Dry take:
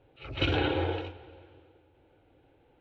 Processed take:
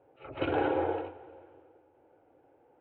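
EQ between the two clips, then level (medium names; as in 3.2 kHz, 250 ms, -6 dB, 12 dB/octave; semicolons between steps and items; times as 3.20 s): band-pass filter 730 Hz, Q 0.85; distance through air 400 m; +5.0 dB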